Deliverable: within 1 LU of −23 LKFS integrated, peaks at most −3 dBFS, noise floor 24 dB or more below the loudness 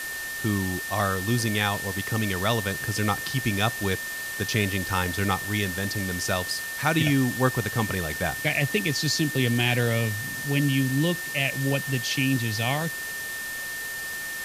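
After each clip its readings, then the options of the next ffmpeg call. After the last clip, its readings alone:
interfering tone 1,800 Hz; level of the tone −32 dBFS; background noise floor −33 dBFS; target noise floor −50 dBFS; integrated loudness −25.5 LKFS; sample peak −8.0 dBFS; target loudness −23.0 LKFS
→ -af "bandreject=frequency=1800:width=30"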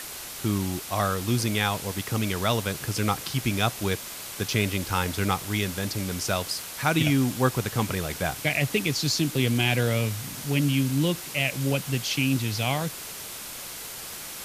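interfering tone none found; background noise floor −38 dBFS; target noise floor −51 dBFS
→ -af "afftdn=noise_reduction=13:noise_floor=-38"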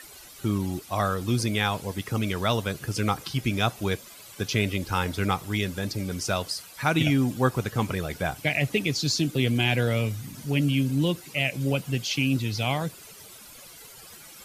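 background noise floor −47 dBFS; target noise floor −51 dBFS
→ -af "afftdn=noise_reduction=6:noise_floor=-47"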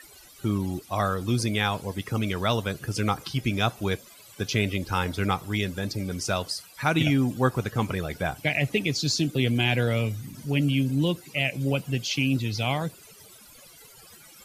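background noise floor −51 dBFS; integrated loudness −26.5 LKFS; sample peak −9.0 dBFS; target loudness −23.0 LKFS
→ -af "volume=3.5dB"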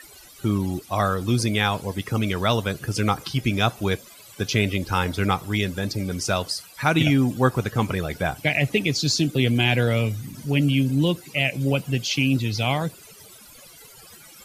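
integrated loudness −23.0 LKFS; sample peak −5.5 dBFS; background noise floor −47 dBFS

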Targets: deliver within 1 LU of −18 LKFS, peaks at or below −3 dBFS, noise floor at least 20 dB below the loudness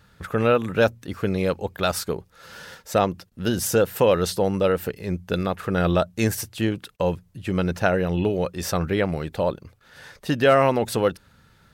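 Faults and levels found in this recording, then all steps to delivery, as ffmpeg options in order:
integrated loudness −23.5 LKFS; sample peak −6.0 dBFS; target loudness −18.0 LKFS
→ -af "volume=5.5dB,alimiter=limit=-3dB:level=0:latency=1"

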